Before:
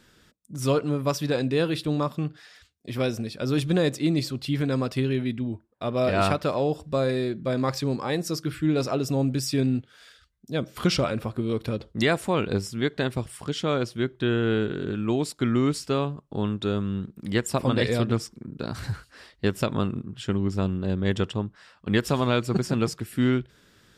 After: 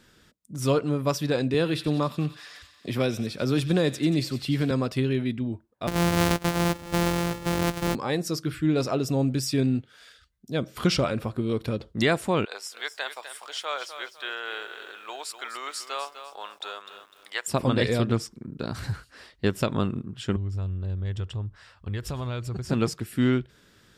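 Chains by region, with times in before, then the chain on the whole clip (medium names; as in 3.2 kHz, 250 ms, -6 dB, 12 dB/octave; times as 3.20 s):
1.54–4.71 s: feedback echo behind a high-pass 91 ms, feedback 69%, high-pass 2 kHz, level -12.5 dB + three bands compressed up and down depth 40%
5.87–7.95 s: sorted samples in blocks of 256 samples + delay 873 ms -16.5 dB
12.45–17.48 s: high-pass 690 Hz 24 dB/octave + bit-crushed delay 251 ms, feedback 35%, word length 9-bit, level -10 dB
20.36–22.70 s: resonant low shelf 130 Hz +13 dB, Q 1.5 + compression 3:1, threshold -32 dBFS
whole clip: none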